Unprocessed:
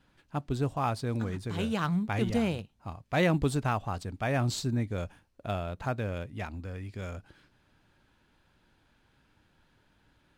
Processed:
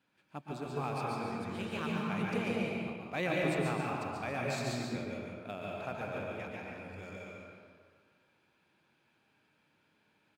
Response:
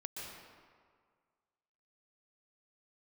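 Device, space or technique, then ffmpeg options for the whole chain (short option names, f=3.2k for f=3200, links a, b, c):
PA in a hall: -filter_complex "[0:a]highpass=180,equalizer=f=2.4k:t=o:w=0.23:g=7.5,aecho=1:1:143:0.596[a];[1:a]atrim=start_sample=2205[b];[a][b]afir=irnorm=-1:irlink=0,volume=-4dB"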